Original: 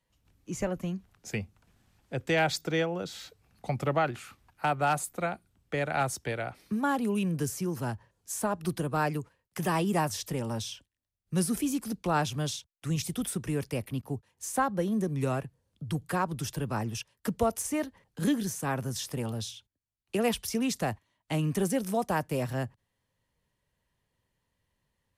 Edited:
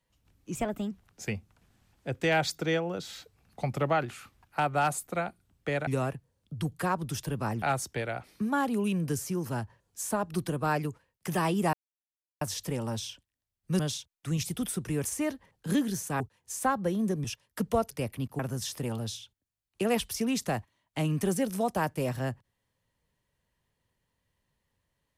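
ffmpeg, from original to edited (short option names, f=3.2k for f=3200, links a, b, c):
-filter_complex "[0:a]asplit=12[a][b][c][d][e][f][g][h][i][j][k][l];[a]atrim=end=0.554[m];[b]atrim=start=0.55:end=0.97,asetpts=PTS-STARTPTS,asetrate=51156,aresample=44100,atrim=end_sample=15967,asetpts=PTS-STARTPTS[n];[c]atrim=start=0.966:end=5.932[o];[d]atrim=start=15.168:end=16.922[p];[e]atrim=start=5.928:end=10.04,asetpts=PTS-STARTPTS,afade=t=out:st=4.108:d=0.004:c=hsin,apad=pad_dur=0.68[q];[f]atrim=start=10.04:end=11.422,asetpts=PTS-STARTPTS,afade=t=in:d=0.004:c=hsin[r];[g]atrim=start=12.378:end=13.642[s];[h]atrim=start=17.578:end=18.732[t];[i]atrim=start=14.128:end=15.172[u];[j]atrim=start=16.918:end=17.582[v];[k]atrim=start=13.638:end=14.132[w];[l]atrim=start=18.728[x];[m][n]acrossfade=d=0.004:c1=hsin:c2=hsin[y];[y][o]acrossfade=d=0.004:c1=hsin:c2=hsin[z];[z][p]acrossfade=d=0.004:c1=hsin:c2=hsin[aa];[q][r]concat=n=2:v=0:a=1[ab];[aa][ab]acrossfade=d=0.004:c1=hsin:c2=hsin[ac];[ac][s]acrossfade=d=0.004:c1=hsin:c2=hsin[ad];[ad][t]acrossfade=d=0.004:c1=hsin:c2=hsin[ae];[ae][u]acrossfade=d=0.004:c1=hsin:c2=hsin[af];[af][v]acrossfade=d=0.004:c1=hsin:c2=hsin[ag];[ag][w]acrossfade=d=0.004:c1=hsin:c2=hsin[ah];[ah][x]acrossfade=d=0.004:c1=hsin:c2=hsin"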